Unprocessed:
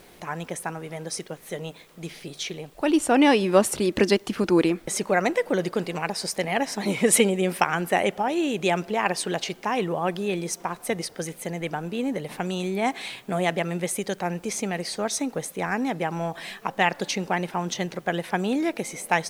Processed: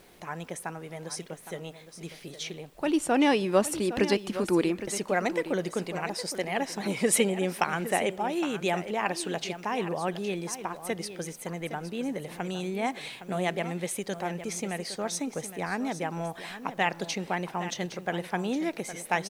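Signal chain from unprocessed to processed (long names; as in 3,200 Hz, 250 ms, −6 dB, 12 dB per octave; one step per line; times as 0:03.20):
single-tap delay 813 ms −12 dB
level −5 dB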